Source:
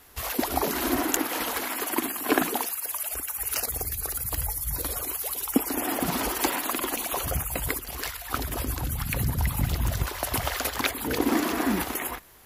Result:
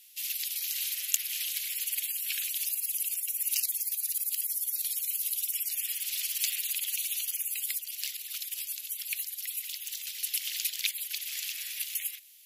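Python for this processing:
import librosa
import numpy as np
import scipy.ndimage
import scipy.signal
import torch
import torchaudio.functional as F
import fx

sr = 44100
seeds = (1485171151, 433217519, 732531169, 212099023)

y = scipy.signal.sosfilt(scipy.signal.butter(6, 2500.0, 'highpass', fs=sr, output='sos'), x)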